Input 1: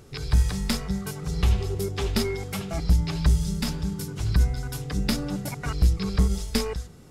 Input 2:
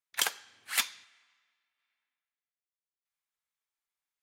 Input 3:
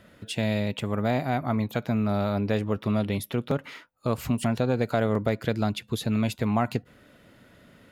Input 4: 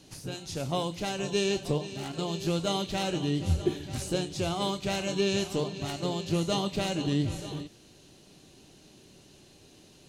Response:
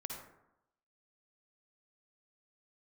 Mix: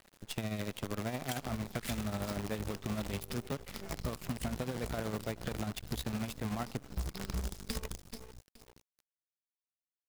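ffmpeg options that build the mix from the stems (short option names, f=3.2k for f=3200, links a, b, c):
-filter_complex "[0:a]acrossover=split=400|3000[a][b][c];[b]acompressor=threshold=-34dB:ratio=2.5[d];[a][d][c]amix=inputs=3:normalize=0,adelay=1150,volume=-8.5dB,asplit=3[e][f][g];[f]volume=-18.5dB[h];[g]volume=-8.5dB[i];[1:a]adelay=1100,volume=-8dB,asplit=2[j][k];[k]volume=-7.5dB[l];[2:a]volume=-5.5dB,asplit=4[m][n][o][p];[n]volume=-13.5dB[q];[o]volume=-20dB[r];[3:a]acompressor=threshold=-33dB:ratio=6,aeval=exprs='(tanh(112*val(0)+0.65)-tanh(0.65))/112':c=same,volume=-15dB,asplit=2[s][t];[t]volume=-3.5dB[u];[p]apad=whole_len=364016[v];[e][v]sidechaincompress=threshold=-44dB:ratio=6:attack=8.7:release=208[w];[4:a]atrim=start_sample=2205[x];[h][l][q]amix=inputs=3:normalize=0[y];[y][x]afir=irnorm=-1:irlink=0[z];[i][r][u]amix=inputs=3:normalize=0,aecho=0:1:427|854|1281|1708:1|0.23|0.0529|0.0122[aa];[w][j][m][s][z][aa]amix=inputs=6:normalize=0,acrusher=bits=6:dc=4:mix=0:aa=0.000001,tremolo=f=13:d=0.56,acompressor=threshold=-33dB:ratio=6"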